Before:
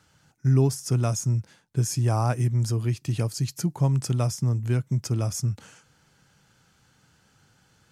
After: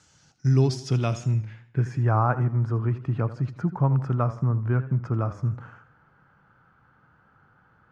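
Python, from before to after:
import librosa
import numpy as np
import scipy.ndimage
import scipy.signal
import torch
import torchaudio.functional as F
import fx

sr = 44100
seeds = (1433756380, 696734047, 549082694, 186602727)

y = fx.filter_sweep_lowpass(x, sr, from_hz=7100.0, to_hz=1300.0, start_s=0.02, end_s=2.26, q=2.8)
y = fx.echo_warbled(y, sr, ms=80, feedback_pct=43, rate_hz=2.8, cents=100, wet_db=-14.5)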